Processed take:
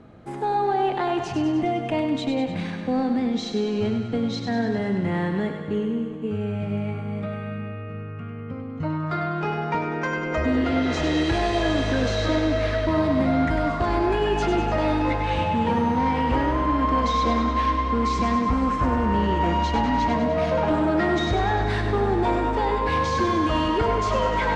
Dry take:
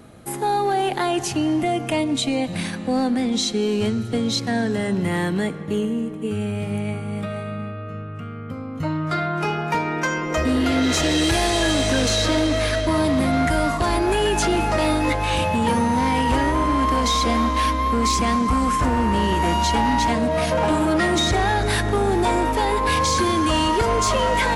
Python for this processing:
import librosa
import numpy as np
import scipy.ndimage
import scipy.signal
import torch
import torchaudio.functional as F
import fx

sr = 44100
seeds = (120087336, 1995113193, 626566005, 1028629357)

y = scipy.signal.sosfilt(scipy.signal.bessel(4, 4800.0, 'lowpass', norm='mag', fs=sr, output='sos'), x)
y = fx.high_shelf(y, sr, hz=2600.0, db=-9.5)
y = fx.echo_thinned(y, sr, ms=99, feedback_pct=65, hz=420.0, wet_db=-6.5)
y = F.gain(torch.from_numpy(y), -2.0).numpy()